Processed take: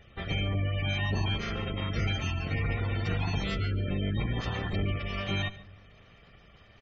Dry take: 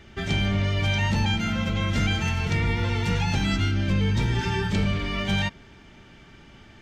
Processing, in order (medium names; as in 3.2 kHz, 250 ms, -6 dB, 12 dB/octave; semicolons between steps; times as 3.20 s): comb filter that takes the minimum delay 1.6 ms; spectral gate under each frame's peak -25 dB strong; delay 141 ms -19.5 dB; on a send at -22 dB: reverberation RT60 0.70 s, pre-delay 77 ms; on the sum: trim -5 dB